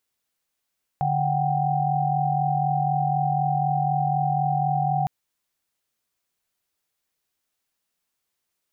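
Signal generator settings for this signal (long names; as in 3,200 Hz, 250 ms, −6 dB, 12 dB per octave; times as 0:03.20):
held notes D3/F#5/G5 sine, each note −24.5 dBFS 4.06 s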